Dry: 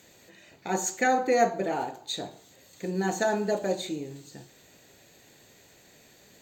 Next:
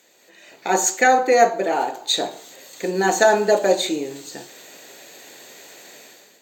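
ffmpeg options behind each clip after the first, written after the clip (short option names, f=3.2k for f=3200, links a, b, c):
-af "dynaudnorm=f=130:g=7:m=14dB,highpass=350"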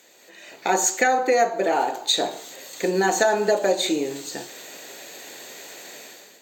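-af "lowshelf=f=140:g=-4.5,acompressor=threshold=-21dB:ratio=3,volume=3dB"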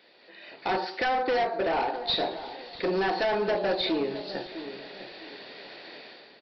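-filter_complex "[0:a]aresample=11025,asoftclip=type=hard:threshold=-20.5dB,aresample=44100,asplit=2[a][b];[b]adelay=655,lowpass=f=1k:p=1,volume=-11dB,asplit=2[c][d];[d]adelay=655,lowpass=f=1k:p=1,volume=0.35,asplit=2[e][f];[f]adelay=655,lowpass=f=1k:p=1,volume=0.35,asplit=2[g][h];[h]adelay=655,lowpass=f=1k:p=1,volume=0.35[i];[a][c][e][g][i]amix=inputs=5:normalize=0,volume=-2.5dB"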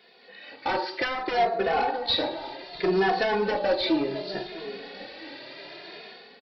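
-filter_complex "[0:a]asplit=2[a][b];[b]adelay=2.4,afreqshift=0.66[c];[a][c]amix=inputs=2:normalize=1,volume=5dB"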